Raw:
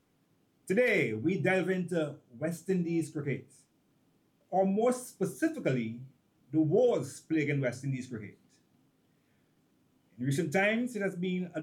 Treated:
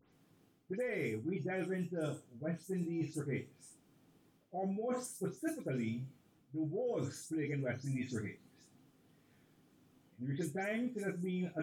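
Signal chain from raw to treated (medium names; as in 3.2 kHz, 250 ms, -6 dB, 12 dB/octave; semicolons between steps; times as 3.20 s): delay that grows with frequency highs late, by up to 121 ms; dynamic bell 3.5 kHz, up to -7 dB, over -48 dBFS, Q 0.79; reverse; compression 12:1, threshold -37 dBFS, peak gain reduction 15.5 dB; reverse; trim +2.5 dB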